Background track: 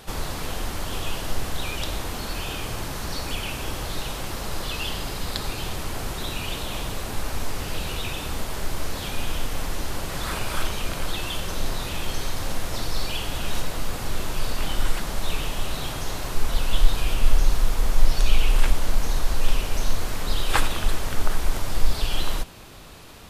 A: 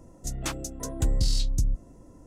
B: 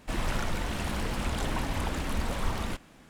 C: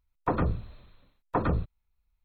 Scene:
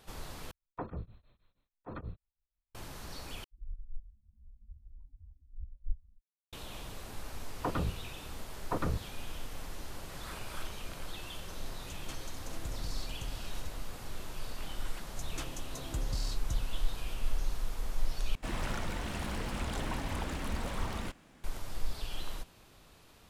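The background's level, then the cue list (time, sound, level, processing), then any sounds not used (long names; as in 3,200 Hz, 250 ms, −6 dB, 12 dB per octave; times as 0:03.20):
background track −14.5 dB
0:00.51: overwrite with C −11.5 dB + tremolo along a rectified sine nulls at 6.3 Hz
0:03.44: overwrite with B −3.5 dB + every bin expanded away from the loudest bin 4 to 1
0:07.37: mix in C −1.5 dB + output level in coarse steps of 15 dB
0:11.63: mix in A −16.5 dB + single-tap delay 442 ms −5.5 dB
0:14.92: mix in A −11 dB
0:18.35: overwrite with B −5 dB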